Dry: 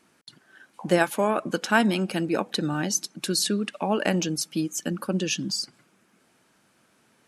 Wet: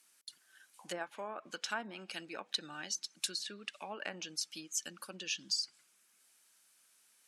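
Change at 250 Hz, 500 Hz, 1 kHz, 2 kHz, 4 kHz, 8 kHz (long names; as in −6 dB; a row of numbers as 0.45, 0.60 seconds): −25.5, −20.5, −16.5, −14.0, −8.0, −10.5 decibels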